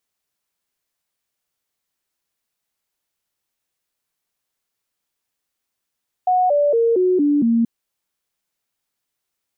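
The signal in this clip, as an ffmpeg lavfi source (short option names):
-f lavfi -i "aevalsrc='0.224*clip(min(mod(t,0.23),0.23-mod(t,0.23))/0.005,0,1)*sin(2*PI*733*pow(2,-floor(t/0.23)/3)*mod(t,0.23))':d=1.38:s=44100"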